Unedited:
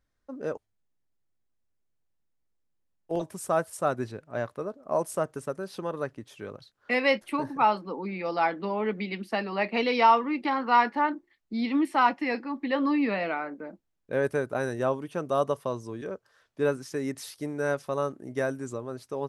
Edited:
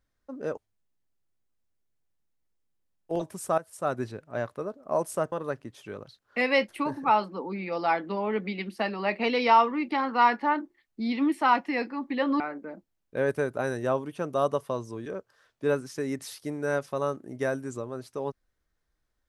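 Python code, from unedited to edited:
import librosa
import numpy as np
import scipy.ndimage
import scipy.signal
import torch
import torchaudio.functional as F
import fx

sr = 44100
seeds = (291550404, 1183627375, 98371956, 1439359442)

y = fx.edit(x, sr, fx.fade_in_from(start_s=3.58, length_s=0.39, floor_db=-16.0),
    fx.cut(start_s=5.32, length_s=0.53),
    fx.cut(start_s=12.93, length_s=0.43), tone=tone)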